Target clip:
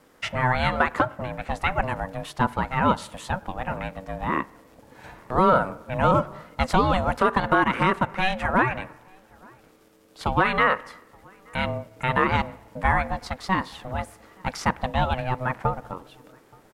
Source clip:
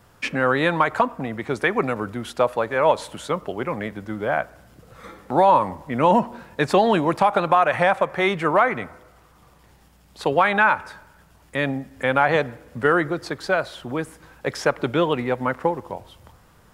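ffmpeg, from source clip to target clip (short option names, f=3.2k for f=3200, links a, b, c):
-filter_complex "[0:a]asplit=2[a][b];[b]adelay=874.6,volume=-28dB,highshelf=f=4k:g=-19.7[c];[a][c]amix=inputs=2:normalize=0,aeval=exprs='val(0)*sin(2*PI*380*n/s)':c=same"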